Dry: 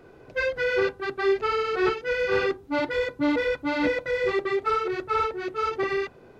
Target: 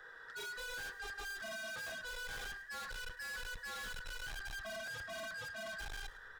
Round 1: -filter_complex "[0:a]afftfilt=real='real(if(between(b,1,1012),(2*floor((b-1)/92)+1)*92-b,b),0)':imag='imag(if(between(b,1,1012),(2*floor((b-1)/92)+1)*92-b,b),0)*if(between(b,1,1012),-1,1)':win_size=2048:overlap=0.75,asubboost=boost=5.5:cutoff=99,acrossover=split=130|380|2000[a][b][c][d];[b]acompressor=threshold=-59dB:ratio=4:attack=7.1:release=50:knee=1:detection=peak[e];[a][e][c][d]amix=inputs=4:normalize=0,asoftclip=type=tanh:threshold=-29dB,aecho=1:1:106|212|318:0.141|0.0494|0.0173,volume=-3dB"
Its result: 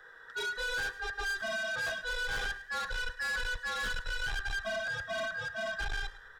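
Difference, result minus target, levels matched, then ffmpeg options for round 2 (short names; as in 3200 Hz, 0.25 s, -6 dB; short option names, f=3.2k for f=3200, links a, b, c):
soft clip: distortion -4 dB
-filter_complex "[0:a]afftfilt=real='real(if(between(b,1,1012),(2*floor((b-1)/92)+1)*92-b,b),0)':imag='imag(if(between(b,1,1012),(2*floor((b-1)/92)+1)*92-b,b),0)*if(between(b,1,1012),-1,1)':win_size=2048:overlap=0.75,asubboost=boost=5.5:cutoff=99,acrossover=split=130|380|2000[a][b][c][d];[b]acompressor=threshold=-59dB:ratio=4:attack=7.1:release=50:knee=1:detection=peak[e];[a][e][c][d]amix=inputs=4:normalize=0,asoftclip=type=tanh:threshold=-40.5dB,aecho=1:1:106|212|318:0.141|0.0494|0.0173,volume=-3dB"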